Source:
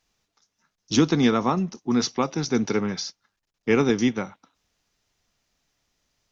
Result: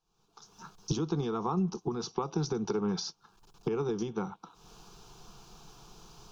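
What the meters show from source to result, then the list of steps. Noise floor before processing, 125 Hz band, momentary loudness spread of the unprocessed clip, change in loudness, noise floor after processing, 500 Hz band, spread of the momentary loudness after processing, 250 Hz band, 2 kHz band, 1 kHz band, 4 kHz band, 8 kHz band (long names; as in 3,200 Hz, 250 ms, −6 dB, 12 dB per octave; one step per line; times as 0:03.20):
−80 dBFS, −5.5 dB, 13 LU, −10.0 dB, −72 dBFS, −8.0 dB, 11 LU, −11.0 dB, −19.0 dB, −8.0 dB, −11.0 dB, can't be measured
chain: camcorder AGC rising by 55 dB per second
high-shelf EQ 3,400 Hz −11.5 dB
downward compressor, threshold −20 dBFS, peak gain reduction 8 dB
phaser with its sweep stopped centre 390 Hz, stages 8
level −3.5 dB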